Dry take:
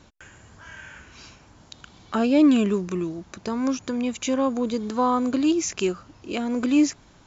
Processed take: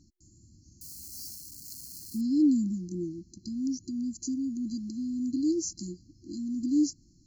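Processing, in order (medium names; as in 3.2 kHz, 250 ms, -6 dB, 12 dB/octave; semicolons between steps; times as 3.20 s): 0.81–2.21 s: zero-crossing glitches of -27.5 dBFS; FFT band-reject 360–4100 Hz; trim -6 dB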